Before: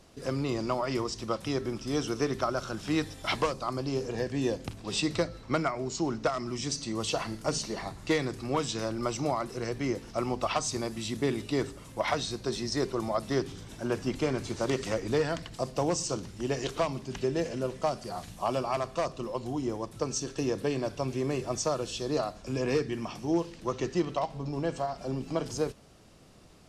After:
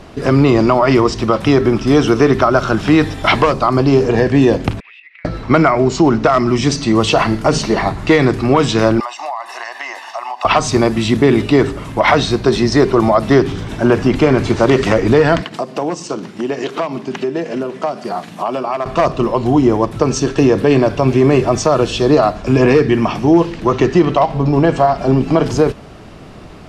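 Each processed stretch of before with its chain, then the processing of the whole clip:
4.8–5.25 Butterworth band-pass 2200 Hz, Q 3.2 + compressor 20:1, threshold -56 dBFS
9–10.45 HPF 670 Hz 24 dB/oct + comb 1.1 ms, depth 78% + compressor, threshold -42 dBFS
15.41–18.86 HPF 170 Hz 24 dB/oct + transient shaper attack 0 dB, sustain -5 dB + compressor 3:1, threshold -39 dBFS
whole clip: tone controls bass -1 dB, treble -14 dB; notch 520 Hz, Q 12; maximiser +22.5 dB; gain -1 dB

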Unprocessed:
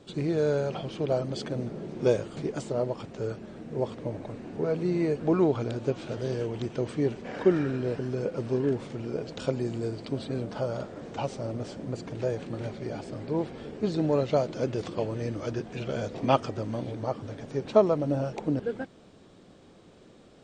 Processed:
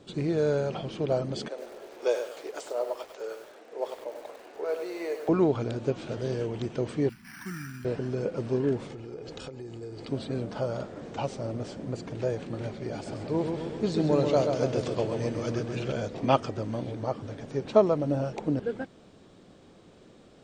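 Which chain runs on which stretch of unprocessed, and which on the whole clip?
1.48–5.29 HPF 460 Hz 24 dB/oct + lo-fi delay 99 ms, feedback 35%, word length 8-bit, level -7.5 dB
7.09–7.85 Chebyshev band-stop 160–1600 Hz + three-band isolator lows -12 dB, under 190 Hz, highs -15 dB, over 3000 Hz + careless resampling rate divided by 6×, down none, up hold
8.88–10.09 compressor 16:1, threshold -36 dBFS + comb 2.4 ms, depth 42%
12.93–15.92 high shelf 4900 Hz +7 dB + darkening echo 0.132 s, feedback 61%, low-pass 4200 Hz, level -5 dB
whole clip: dry

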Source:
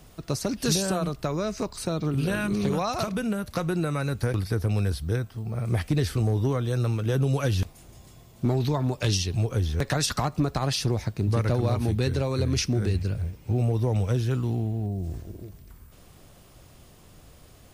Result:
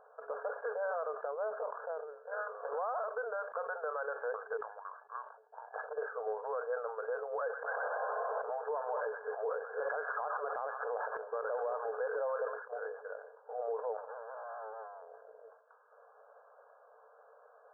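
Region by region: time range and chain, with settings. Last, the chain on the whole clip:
1.25–2.47 tilt -2.5 dB/oct + negative-ratio compressor -30 dBFS + Doppler distortion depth 0.31 ms
4.57–5.76 HPF 1000 Hz + gate -51 dBFS, range -16 dB + frequency shift -440 Hz
7.41–12.62 thin delay 0.124 s, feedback 52%, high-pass 1800 Hz, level -8 dB + fast leveller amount 100%
13.97–15.08 bell 230 Hz +14.5 dB 0.38 oct + tube stage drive 34 dB, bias 0.6
whole clip: FFT band-pass 420–1700 Hz; limiter -28 dBFS; sustainer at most 98 dB/s

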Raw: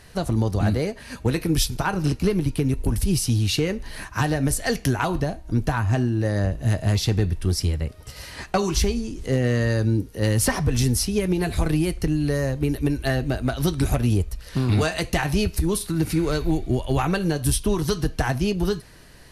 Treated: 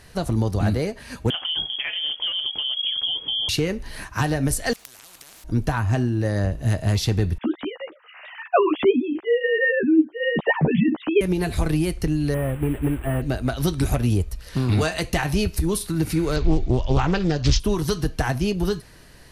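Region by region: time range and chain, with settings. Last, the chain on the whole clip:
1.3–3.49 compressor 3:1, threshold -24 dBFS + inverted band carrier 3300 Hz
4.73–5.44 tilt +3 dB/oct + compressor 8:1, threshold -36 dBFS + spectral compressor 10:1
7.38–11.21 sine-wave speech + doubler 13 ms -4 dB
12.34–13.22 delta modulation 16 kbps, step -35.5 dBFS + careless resampling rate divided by 4×, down filtered, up hold
16.36–17.6 low shelf 92 Hz +9 dB + careless resampling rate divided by 3×, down none, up filtered + Doppler distortion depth 0.53 ms
whole clip: dry

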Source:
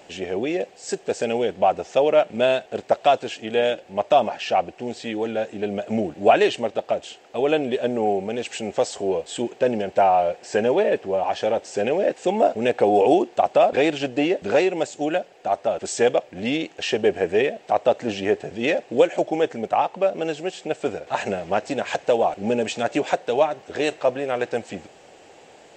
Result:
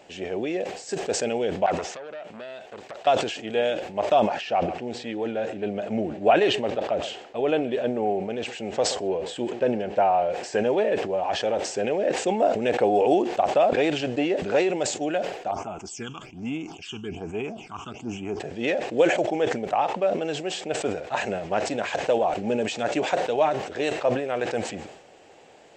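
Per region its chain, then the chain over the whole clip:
1.66–3.07 low shelf 400 Hz -5 dB + compressor 8:1, threshold -29 dBFS + core saturation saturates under 2100 Hz
4.41–10.3 high shelf 6700 Hz -11 dB + echo 0.128 s -21 dB
15.51–18.4 phaser stages 8, 1.2 Hz, lowest notch 600–4800 Hz + fixed phaser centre 2700 Hz, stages 8
whole clip: high shelf 7400 Hz -5 dB; sustainer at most 72 dB/s; gain -3.5 dB

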